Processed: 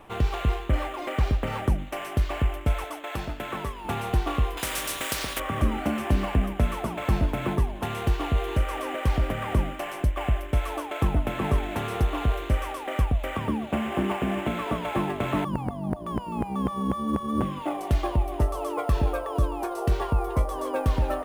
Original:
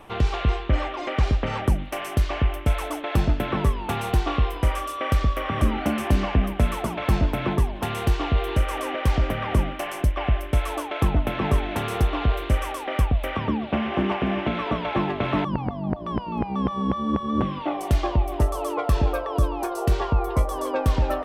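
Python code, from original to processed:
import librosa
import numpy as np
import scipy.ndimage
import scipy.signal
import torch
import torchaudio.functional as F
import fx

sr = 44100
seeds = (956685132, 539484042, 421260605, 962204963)

p1 = fx.low_shelf(x, sr, hz=410.0, db=-11.5, at=(2.84, 3.85))
p2 = fx.sample_hold(p1, sr, seeds[0], rate_hz=10000.0, jitter_pct=0)
p3 = p1 + F.gain(torch.from_numpy(p2), -8.0).numpy()
p4 = fx.spectral_comp(p3, sr, ratio=4.0, at=(4.57, 5.4))
y = F.gain(torch.from_numpy(p4), -5.5).numpy()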